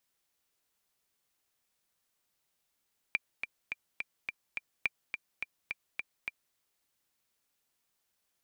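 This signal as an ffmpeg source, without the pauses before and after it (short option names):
-f lavfi -i "aevalsrc='pow(10,(-15-7*gte(mod(t,6*60/211),60/211))/20)*sin(2*PI*2370*mod(t,60/211))*exp(-6.91*mod(t,60/211)/0.03)':d=3.41:s=44100"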